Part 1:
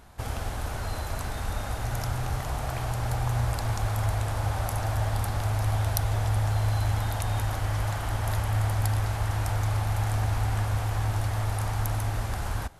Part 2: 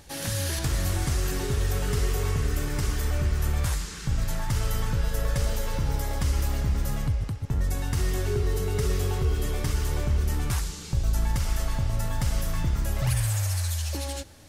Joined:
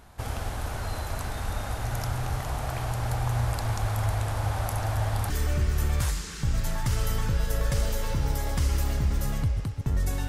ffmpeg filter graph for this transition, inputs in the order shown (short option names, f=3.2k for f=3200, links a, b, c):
-filter_complex "[0:a]apad=whole_dur=10.28,atrim=end=10.28,atrim=end=5.302[a];[1:a]atrim=start=2.938:end=7.92[b];[a][b]acrossfade=d=0.004:c1=hsin:c2=hsin"